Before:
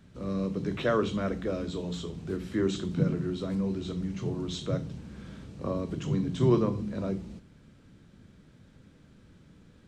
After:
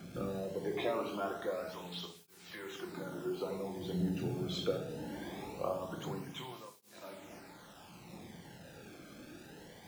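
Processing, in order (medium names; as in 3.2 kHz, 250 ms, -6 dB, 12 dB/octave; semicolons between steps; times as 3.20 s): low-pass 4.9 kHz 12 dB/octave; peaking EQ 810 Hz +11.5 dB 0.35 oct; hum notches 60/120/180/240 Hz; compression 4:1, threshold -40 dBFS, peak gain reduction 18 dB; phaser 0.49 Hz, delay 3.6 ms, feedback 49%; bit crusher 10-bit; simulated room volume 450 m³, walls mixed, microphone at 0.87 m; cancelling through-zero flanger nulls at 0.22 Hz, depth 1.1 ms; trim +6 dB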